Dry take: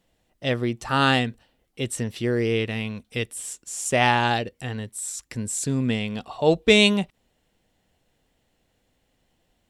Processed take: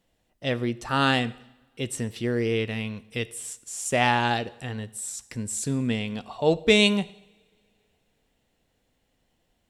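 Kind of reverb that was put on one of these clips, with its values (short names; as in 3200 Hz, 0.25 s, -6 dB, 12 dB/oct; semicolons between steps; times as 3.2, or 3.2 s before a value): two-slope reverb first 0.79 s, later 3.2 s, from -26 dB, DRR 16 dB; gain -2.5 dB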